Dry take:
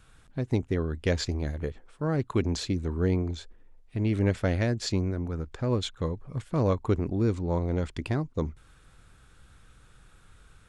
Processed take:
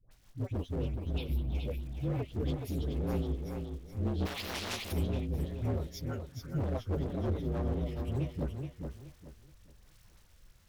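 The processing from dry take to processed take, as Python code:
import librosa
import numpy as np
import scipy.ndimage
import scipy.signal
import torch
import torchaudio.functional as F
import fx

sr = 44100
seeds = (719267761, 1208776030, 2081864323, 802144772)

y = fx.partial_stretch(x, sr, pct=118)
y = fx.highpass(y, sr, hz=280.0, slope=6, at=(5.87, 6.42))
y = fx.env_phaser(y, sr, low_hz=360.0, high_hz=1500.0, full_db=-27.5)
y = fx.dmg_crackle(y, sr, seeds[0], per_s=270.0, level_db=-48.0)
y = fx.dispersion(y, sr, late='highs', ms=111.0, hz=930.0)
y = fx.fixed_phaser(y, sr, hz=1800.0, stages=6, at=(0.85, 1.55))
y = np.clip(y, -10.0 ** (-28.0 / 20.0), 10.0 ** (-28.0 / 20.0))
y = fx.rotary_switch(y, sr, hz=6.3, then_hz=1.0, switch_at_s=7.75)
y = fx.echo_feedback(y, sr, ms=423, feedback_pct=28, wet_db=-6)
y = fx.spectral_comp(y, sr, ratio=4.0, at=(4.25, 4.91), fade=0.02)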